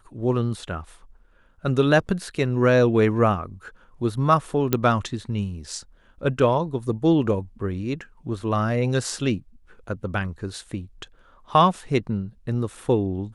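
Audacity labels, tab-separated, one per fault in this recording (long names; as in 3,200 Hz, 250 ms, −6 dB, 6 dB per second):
4.730000	4.730000	click −6 dBFS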